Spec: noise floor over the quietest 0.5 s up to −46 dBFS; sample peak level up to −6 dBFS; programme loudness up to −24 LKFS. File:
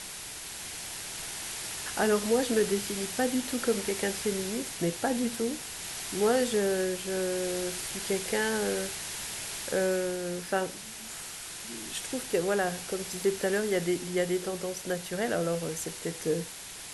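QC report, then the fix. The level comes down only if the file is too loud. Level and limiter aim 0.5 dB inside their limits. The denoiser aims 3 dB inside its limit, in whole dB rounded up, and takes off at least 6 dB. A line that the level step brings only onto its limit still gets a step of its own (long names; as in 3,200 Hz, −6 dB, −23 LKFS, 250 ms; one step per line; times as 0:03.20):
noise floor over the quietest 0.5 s −43 dBFS: out of spec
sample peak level −13.5 dBFS: in spec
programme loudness −30.5 LKFS: in spec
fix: broadband denoise 6 dB, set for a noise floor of −43 dBFS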